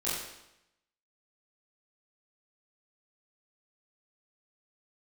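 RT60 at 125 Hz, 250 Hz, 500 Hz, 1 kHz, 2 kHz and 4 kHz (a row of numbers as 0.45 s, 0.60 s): 0.90 s, 0.85 s, 0.85 s, 0.85 s, 0.85 s, 0.80 s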